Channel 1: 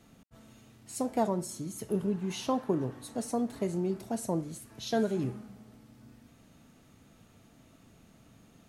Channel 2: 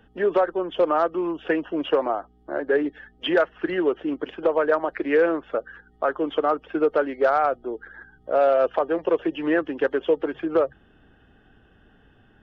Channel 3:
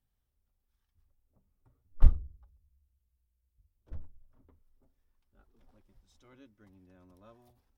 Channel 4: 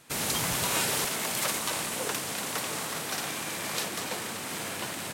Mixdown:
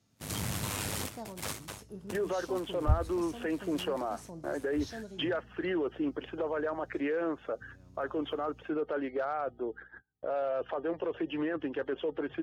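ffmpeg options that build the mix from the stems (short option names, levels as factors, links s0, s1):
-filter_complex "[0:a]equalizer=f=5300:t=o:w=0.92:g=11.5,volume=0.158[s0];[1:a]adelay=1950,volume=0.531[s1];[2:a]aeval=exprs='val(0)+0.00141*(sin(2*PI*60*n/s)+sin(2*PI*2*60*n/s)/2+sin(2*PI*3*60*n/s)/3+sin(2*PI*4*60*n/s)/4+sin(2*PI*5*60*n/s)/5)':c=same,adelay=850,volume=0.708,asplit=3[s2][s3][s4];[s2]atrim=end=7,asetpts=PTS-STARTPTS,afade=t=out:st=6.996:d=0.004:c=hsin[s5];[s3]atrim=start=7:end=7.61,asetpts=PTS-STARTPTS,volume=0[s6];[s4]atrim=start=7.61,asetpts=PTS-STARTPTS,afade=t=in:d=0.004:c=hsin[s7];[s5][s6][s7]concat=n=3:v=0:a=1[s8];[3:a]agate=range=0.112:threshold=0.0398:ratio=16:detection=peak,lowshelf=f=240:g=9.5,aeval=exprs='val(0)*sin(2*PI*51*n/s)':c=same,volume=0.891[s9];[s1][s9]amix=inputs=2:normalize=0,agate=range=0.0355:threshold=0.00398:ratio=16:detection=peak,alimiter=level_in=1.19:limit=0.0631:level=0:latency=1:release=10,volume=0.841,volume=1[s10];[s0][s8][s10]amix=inputs=3:normalize=0,highpass=54,equalizer=f=100:t=o:w=0.89:g=9.5"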